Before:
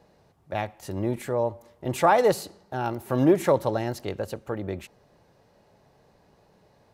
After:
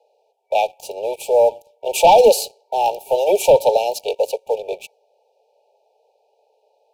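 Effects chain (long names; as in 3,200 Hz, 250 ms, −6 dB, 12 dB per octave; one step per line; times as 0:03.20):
Butterworth high-pass 420 Hz 96 dB per octave
leveller curve on the samples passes 2
brick-wall band-stop 930–2,300 Hz
one half of a high-frequency compander decoder only
level +6 dB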